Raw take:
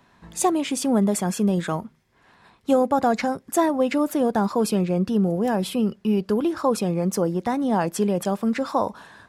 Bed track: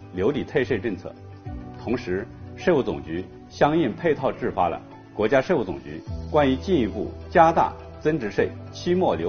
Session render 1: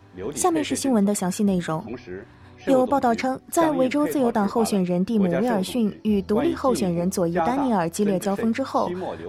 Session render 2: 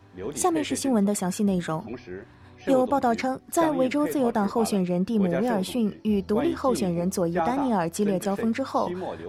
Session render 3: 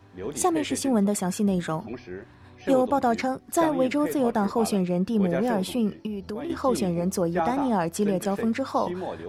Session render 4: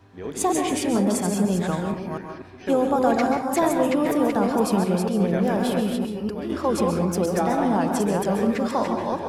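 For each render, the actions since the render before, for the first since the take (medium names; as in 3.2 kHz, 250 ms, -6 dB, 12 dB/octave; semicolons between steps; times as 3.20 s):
add bed track -9 dB
trim -2.5 dB
6.06–6.50 s: compression, threshold -29 dBFS
chunks repeated in reverse 242 ms, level -4 dB; plate-style reverb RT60 0.52 s, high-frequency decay 0.55×, pre-delay 120 ms, DRR 4.5 dB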